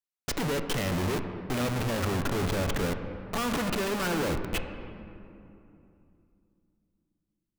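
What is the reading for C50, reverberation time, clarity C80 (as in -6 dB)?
7.5 dB, 2.9 s, 8.5 dB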